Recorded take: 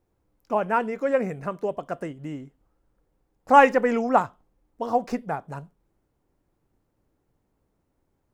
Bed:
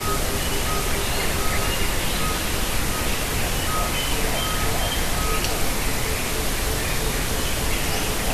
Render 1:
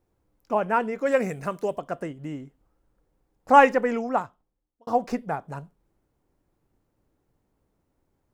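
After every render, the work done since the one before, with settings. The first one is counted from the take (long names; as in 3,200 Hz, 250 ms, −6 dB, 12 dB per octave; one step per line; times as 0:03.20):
0:01.05–0:01.78: high-shelf EQ 2,600 Hz → 3,900 Hz +11.5 dB
0:03.55–0:04.87: fade out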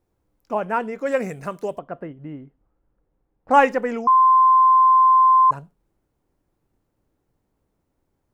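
0:01.79–0:03.51: high-frequency loss of the air 430 metres
0:04.07–0:05.51: beep over 1,040 Hz −10.5 dBFS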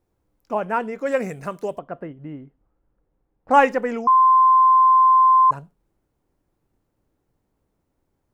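no processing that can be heard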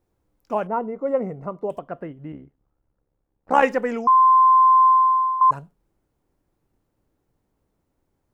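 0:00.67–0:01.70: Savitzky-Golay smoothing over 65 samples
0:02.32–0:03.63: amplitude modulation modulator 69 Hz, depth 65%
0:04.86–0:05.41: fade out, to −13.5 dB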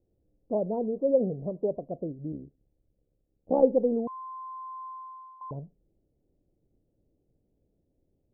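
adaptive Wiener filter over 9 samples
Butterworth low-pass 630 Hz 36 dB per octave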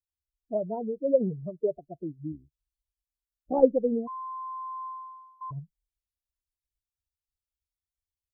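spectral dynamics exaggerated over time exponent 2
automatic gain control gain up to 3.5 dB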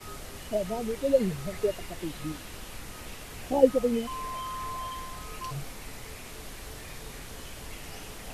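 mix in bed −18.5 dB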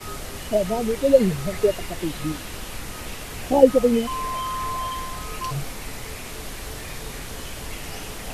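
level +8 dB
brickwall limiter −1 dBFS, peak gain reduction 2.5 dB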